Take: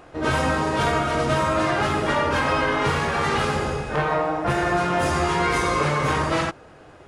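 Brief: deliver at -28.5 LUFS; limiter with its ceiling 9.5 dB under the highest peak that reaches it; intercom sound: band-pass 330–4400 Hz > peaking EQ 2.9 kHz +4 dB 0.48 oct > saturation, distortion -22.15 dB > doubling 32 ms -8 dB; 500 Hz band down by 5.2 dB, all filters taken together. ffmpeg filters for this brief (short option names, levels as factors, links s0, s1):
-filter_complex "[0:a]equalizer=f=500:t=o:g=-6,alimiter=limit=0.0944:level=0:latency=1,highpass=330,lowpass=4400,equalizer=f=2900:t=o:w=0.48:g=4,asoftclip=threshold=0.0841,asplit=2[s0][s1];[s1]adelay=32,volume=0.398[s2];[s0][s2]amix=inputs=2:normalize=0,volume=1.19"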